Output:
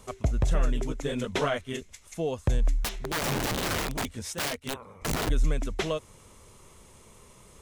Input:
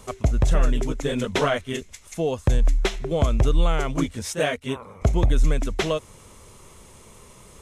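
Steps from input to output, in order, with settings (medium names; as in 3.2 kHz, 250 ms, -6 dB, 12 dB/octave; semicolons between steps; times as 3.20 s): 2.83–5.29 s: integer overflow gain 19 dB; trim -5.5 dB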